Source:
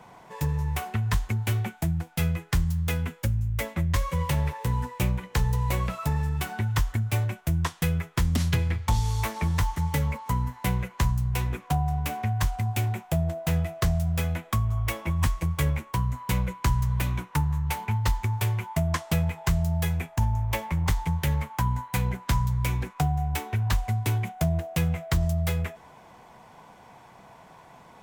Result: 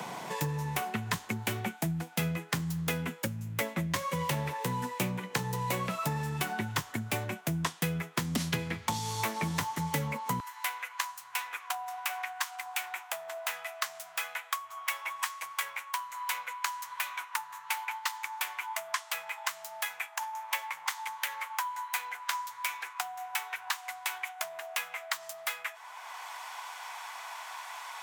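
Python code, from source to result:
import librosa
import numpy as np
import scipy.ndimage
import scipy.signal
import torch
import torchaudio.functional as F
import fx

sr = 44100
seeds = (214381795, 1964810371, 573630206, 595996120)

y = fx.highpass(x, sr, hz=fx.steps((0.0, 160.0), (10.4, 950.0)), slope=24)
y = fx.band_squash(y, sr, depth_pct=70)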